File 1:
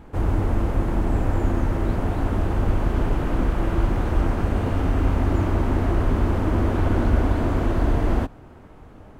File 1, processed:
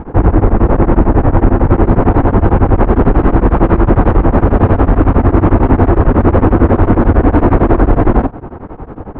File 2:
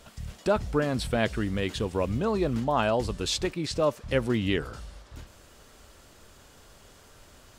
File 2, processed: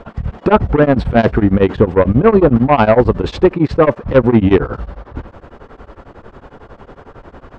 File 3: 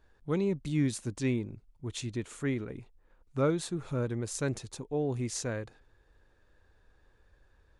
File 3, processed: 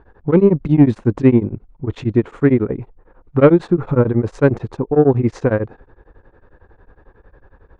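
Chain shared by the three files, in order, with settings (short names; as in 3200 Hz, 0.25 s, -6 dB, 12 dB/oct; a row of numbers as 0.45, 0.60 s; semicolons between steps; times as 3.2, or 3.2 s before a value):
LPF 1100 Hz 12 dB/oct; low shelf 200 Hz -5.5 dB; notch 620 Hz, Q 12; limiter -18.5 dBFS; sine folder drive 3 dB, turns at -18.5 dBFS; beating tremolo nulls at 11 Hz; normalise peaks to -1.5 dBFS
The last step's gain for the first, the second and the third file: +17.0, +17.0, +17.0 dB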